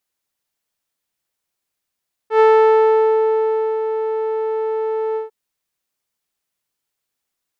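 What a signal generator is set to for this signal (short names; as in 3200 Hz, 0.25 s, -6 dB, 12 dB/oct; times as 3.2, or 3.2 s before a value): synth note saw A4 12 dB/oct, low-pass 710 Hz, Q 0.77, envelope 1 oct, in 0.89 s, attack 97 ms, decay 1.39 s, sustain -9.5 dB, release 0.14 s, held 2.86 s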